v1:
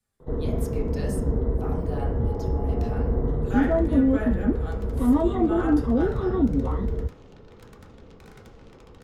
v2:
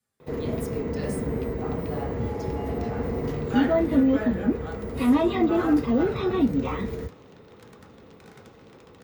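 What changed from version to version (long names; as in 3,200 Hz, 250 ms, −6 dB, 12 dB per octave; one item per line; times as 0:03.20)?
first sound: remove moving average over 18 samples
master: add high-pass filter 110 Hz 12 dB per octave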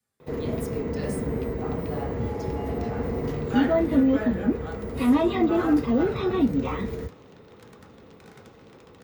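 nothing changed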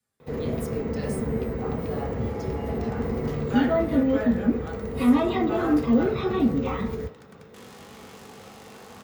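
first sound: send on
second sound: entry −1.80 s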